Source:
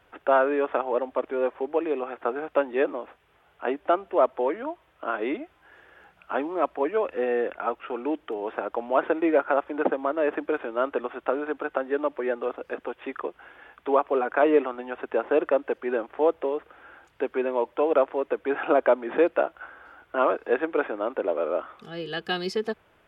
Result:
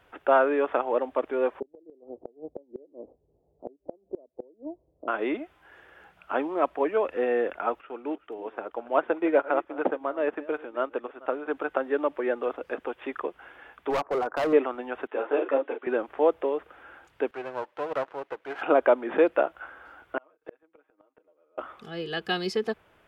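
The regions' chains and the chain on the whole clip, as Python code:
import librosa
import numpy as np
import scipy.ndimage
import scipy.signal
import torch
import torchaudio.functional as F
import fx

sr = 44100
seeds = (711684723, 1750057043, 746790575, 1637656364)

y = fx.chain(x, sr, fx.cheby2_lowpass(hz=1400.0, order=4, stop_db=50),
    fx.gate_flip(shuts_db=-22.0, range_db=-28), at=(1.6, 5.08))
y = fx.chain(y, sr, fx.reverse_delay(ms=230, wet_db=-13.0),
    fx.upward_expand(threshold_db=-40.0, expansion=1.5), at=(7.81, 11.48))
y = fx.chain(y, sr, fx.lowpass(hz=1400.0, slope=24),
    fx.low_shelf(hz=160.0, db=-10.0),
    fx.clip_hard(threshold_db=-23.0), at=(13.9, 14.53))
y = fx.chain(y, sr, fx.brickwall_bandpass(low_hz=240.0, high_hz=3900.0),
    fx.doubler(ms=36.0, db=-6.5),
    fx.ensemble(), at=(15.07, 15.87))
y = fx.chain(y, sr, fx.halfwave_gain(db=-12.0),
    fx.highpass(hz=820.0, slope=6),
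    fx.high_shelf(hz=3500.0, db=-9.0), at=(17.31, 18.62))
y = fx.chain(y, sr, fx.comb(ms=6.4, depth=0.74),
    fx.gate_flip(shuts_db=-19.0, range_db=-41), at=(20.17, 21.58))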